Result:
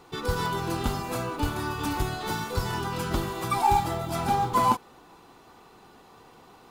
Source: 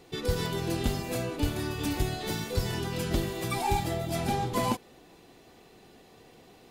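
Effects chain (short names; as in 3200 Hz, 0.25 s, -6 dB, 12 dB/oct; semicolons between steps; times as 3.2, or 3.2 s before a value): band shelf 1100 Hz +10.5 dB 1 oct; short-mantissa float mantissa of 4-bit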